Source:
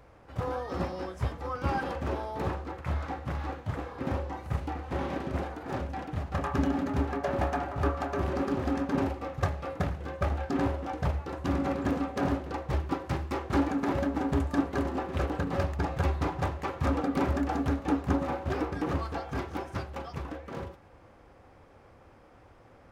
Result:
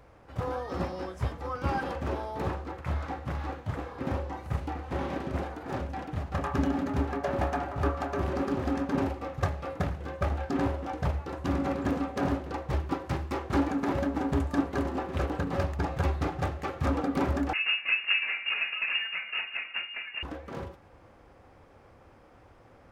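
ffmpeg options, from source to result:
-filter_complex "[0:a]asettb=1/sr,asplit=3[s0][s1][s2];[s0]atrim=end=16.164[s3];[s1]atrim=start=16.16:end=16.86,asetpts=PTS-STARTPTS,afade=t=in:d=0.004:c=qsin,afade=t=out:st=0.696:d=0.004:c=qsin,bandreject=f=980:w=9.2[s4];[s2]atrim=start=16.856[s5];[s3][s4]acrossfade=d=0.004:c1=hsin:c2=qsin[s6];[s6][s5]acrossfade=d=0.004:c1=qsin:c2=hsin,asettb=1/sr,asplit=3[s7][s8][s9];[s7]atrim=end=17.534[s10];[s8]atrim=start=17.53:end=20.23,asetpts=PTS-STARTPTS,afade=t=in:d=0.004:c=qsin,afade=t=out:st=2.696:d=0.004:c=qsin,lowpass=f=2500:t=q:w=0.5098,lowpass=f=2500:t=q:w=0.6013,lowpass=f=2500:t=q:w=0.9,lowpass=f=2500:t=q:w=2.563,afreqshift=-2900[s11];[s9]atrim=start=20.226[s12];[s10][s11]acrossfade=d=0.004:c1=hsin:c2=qsin[s13];[s13][s12]acrossfade=d=0.004:c1=qsin:c2=hsin"

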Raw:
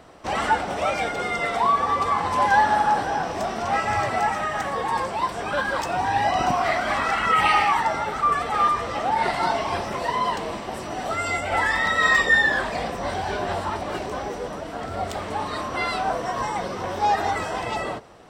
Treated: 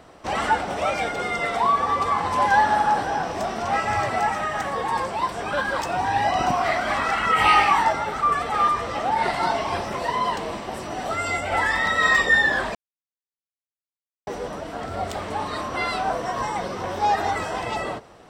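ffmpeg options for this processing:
-filter_complex "[0:a]asettb=1/sr,asplit=3[s0][s1][s2];[s0]atrim=end=7.344[s3];[s1]atrim=start=7.34:end=7.93,asetpts=PTS-STARTPTS,afade=t=in:d=0.004:c=qsin,afade=t=out:st=0.586:d=0.004:c=qsin,asplit=2[s4][s5];[s5]adelay=20,volume=0.794[s6];[s4][s6]amix=inputs=2:normalize=0,atrim=end_sample=26019[s7];[s2]atrim=start=7.926[s8];[s3][s7]acrossfade=d=0.004:c1=hsin:c2=qsin[s9];[s9][s8]acrossfade=d=0.004:c1=qsin:c2=hsin,asplit=3[s10][s11][s12];[s10]atrim=end=12.75,asetpts=PTS-STARTPTS,afade=t=out:st=12.746:d=0.004:c=hsin[s13];[s11]atrim=start=12.75:end=14.27,asetpts=PTS-STARTPTS,volume=0[s14];[s12]atrim=start=14.27,asetpts=PTS-STARTPTS,afade=t=in:d=0.004:c=hsin[s15];[s13][s14][s15]concat=n=3:v=0:a=1"

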